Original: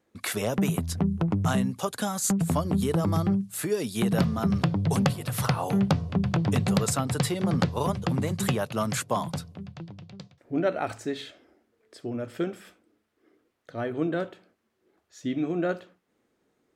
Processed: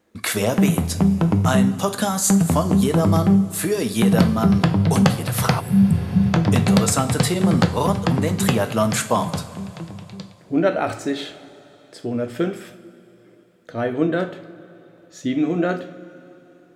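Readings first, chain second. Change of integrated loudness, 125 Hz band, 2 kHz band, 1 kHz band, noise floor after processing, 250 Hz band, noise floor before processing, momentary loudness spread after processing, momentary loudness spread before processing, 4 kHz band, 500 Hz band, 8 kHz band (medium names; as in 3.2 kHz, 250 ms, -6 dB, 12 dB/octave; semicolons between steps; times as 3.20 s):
+8.0 dB, +7.5 dB, +7.5 dB, +7.5 dB, -51 dBFS, +8.5 dB, -74 dBFS, 13 LU, 12 LU, +7.5 dB, +7.5 dB, +8.0 dB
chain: two-slope reverb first 0.41 s, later 3.4 s, from -16 dB, DRR 7 dB; spectral replace 5.63–6.24 s, 250–7500 Hz after; trim +7 dB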